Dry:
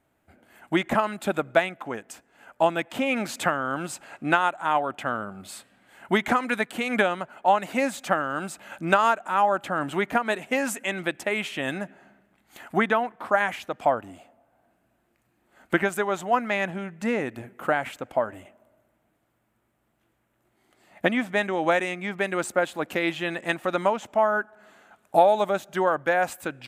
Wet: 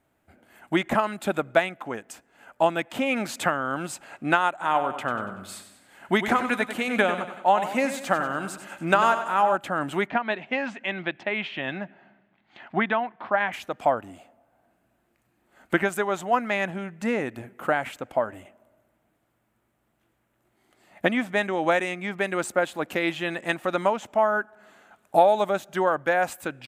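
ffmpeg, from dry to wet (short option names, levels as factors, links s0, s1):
-filter_complex "[0:a]asplit=3[s0][s1][s2];[s0]afade=t=out:st=4.6:d=0.02[s3];[s1]aecho=1:1:95|190|285|380|475:0.316|0.155|0.0759|0.0372|0.0182,afade=t=in:st=4.6:d=0.02,afade=t=out:st=9.55:d=0.02[s4];[s2]afade=t=in:st=9.55:d=0.02[s5];[s3][s4][s5]amix=inputs=3:normalize=0,asplit=3[s6][s7][s8];[s6]afade=t=out:st=10.07:d=0.02[s9];[s7]highpass=110,equalizer=f=280:t=q:w=4:g=-4,equalizer=f=470:t=q:w=4:g=-7,equalizer=f=1300:t=q:w=4:g=-4,lowpass=f=3900:w=0.5412,lowpass=f=3900:w=1.3066,afade=t=in:st=10.07:d=0.02,afade=t=out:st=13.52:d=0.02[s10];[s8]afade=t=in:st=13.52:d=0.02[s11];[s9][s10][s11]amix=inputs=3:normalize=0"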